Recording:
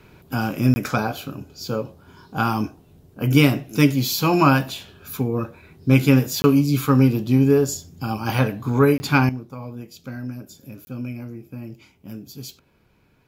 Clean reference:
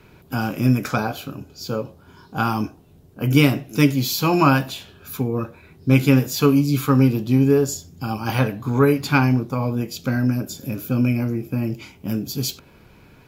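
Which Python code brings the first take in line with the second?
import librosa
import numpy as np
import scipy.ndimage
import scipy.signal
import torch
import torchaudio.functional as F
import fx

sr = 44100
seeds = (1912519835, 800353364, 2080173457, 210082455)

y = fx.fix_interpolate(x, sr, at_s=(0.74, 6.42, 8.98, 10.85), length_ms=20.0)
y = fx.fix_level(y, sr, at_s=9.29, step_db=11.5)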